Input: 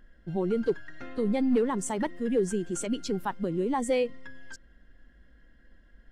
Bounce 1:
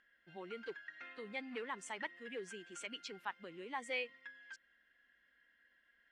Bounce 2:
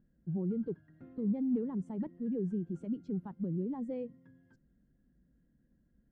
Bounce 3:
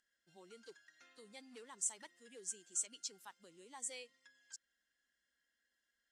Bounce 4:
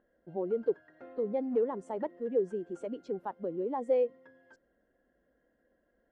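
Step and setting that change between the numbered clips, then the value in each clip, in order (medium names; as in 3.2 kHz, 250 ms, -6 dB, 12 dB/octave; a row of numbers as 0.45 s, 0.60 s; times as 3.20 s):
band-pass filter, frequency: 2.3 kHz, 160 Hz, 7.3 kHz, 550 Hz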